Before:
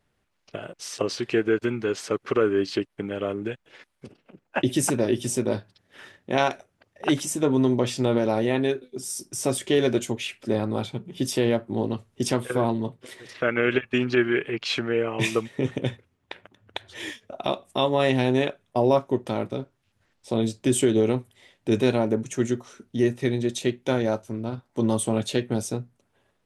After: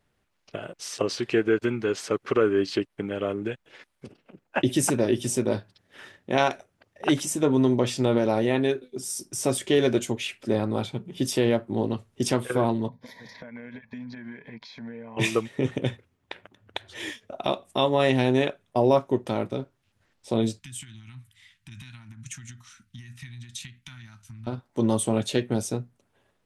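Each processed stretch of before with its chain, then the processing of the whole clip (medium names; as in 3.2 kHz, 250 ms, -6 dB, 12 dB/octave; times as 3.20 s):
12.88–15.17 s: static phaser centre 1.9 kHz, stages 8 + compression 12:1, threshold -43 dBFS + small resonant body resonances 230/390/970 Hz, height 13 dB, ringing for 40 ms
20.59–24.47 s: compression 16:1, threshold -30 dBFS + Chebyshev band-stop 130–1700 Hz
whole clip: none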